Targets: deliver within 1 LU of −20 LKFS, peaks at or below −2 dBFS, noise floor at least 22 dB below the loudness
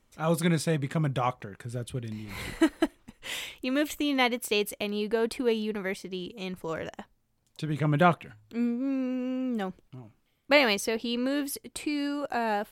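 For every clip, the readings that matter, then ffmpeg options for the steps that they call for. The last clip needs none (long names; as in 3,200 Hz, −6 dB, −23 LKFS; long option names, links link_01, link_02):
integrated loudness −29.0 LKFS; sample peak −9.0 dBFS; target loudness −20.0 LKFS
→ -af "volume=9dB,alimiter=limit=-2dB:level=0:latency=1"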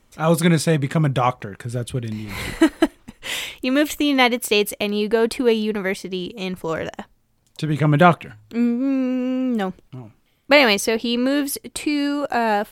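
integrated loudness −20.5 LKFS; sample peak −2.0 dBFS; background noise floor −62 dBFS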